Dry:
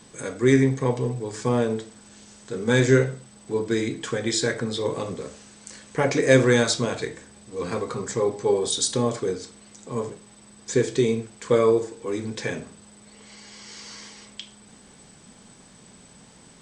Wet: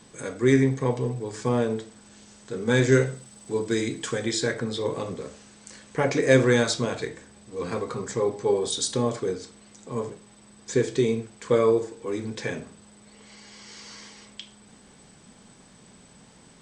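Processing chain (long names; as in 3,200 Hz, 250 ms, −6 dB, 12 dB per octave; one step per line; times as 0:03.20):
high-shelf EQ 5,500 Hz −2.5 dB, from 0:02.92 +7 dB, from 0:04.26 −3.5 dB
level −1.5 dB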